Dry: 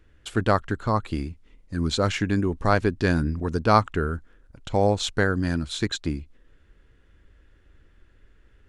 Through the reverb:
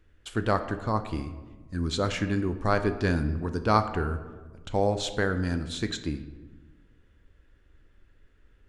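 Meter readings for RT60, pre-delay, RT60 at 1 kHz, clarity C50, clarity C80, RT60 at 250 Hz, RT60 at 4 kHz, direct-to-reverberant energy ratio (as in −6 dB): 1.3 s, 10 ms, 1.2 s, 11.0 dB, 13.0 dB, 1.7 s, 0.75 s, 8.5 dB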